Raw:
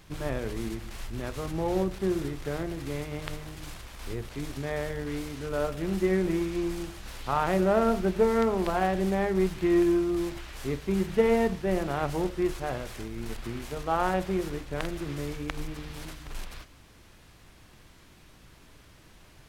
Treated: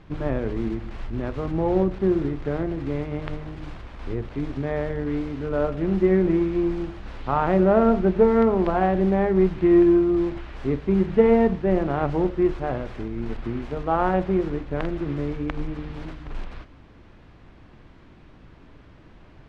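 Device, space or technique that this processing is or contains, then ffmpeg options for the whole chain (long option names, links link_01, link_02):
phone in a pocket: -af "lowpass=3700,equalizer=frequency=270:width_type=o:width=0.67:gain=3,highshelf=frequency=2000:gain=-10.5,volume=6dB"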